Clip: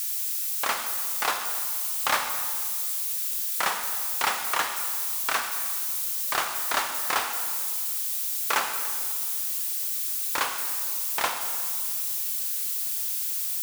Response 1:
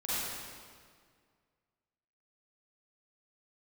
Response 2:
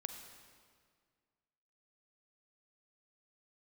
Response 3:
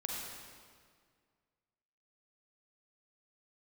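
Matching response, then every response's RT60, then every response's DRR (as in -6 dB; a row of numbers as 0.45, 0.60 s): 2; 1.9, 1.9, 1.9 s; -11.5, 6.0, -2.5 dB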